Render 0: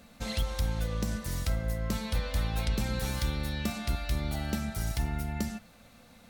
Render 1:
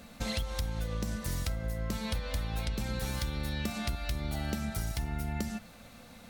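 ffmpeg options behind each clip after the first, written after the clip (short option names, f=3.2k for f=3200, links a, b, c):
-af "acompressor=threshold=-34dB:ratio=6,volume=4dB"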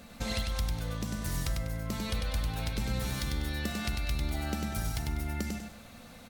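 -af "aecho=1:1:98|196|294|392:0.631|0.196|0.0606|0.0188"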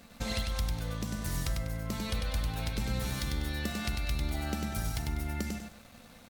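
-af "aeval=exprs='sgn(val(0))*max(abs(val(0))-0.0015,0)':c=same"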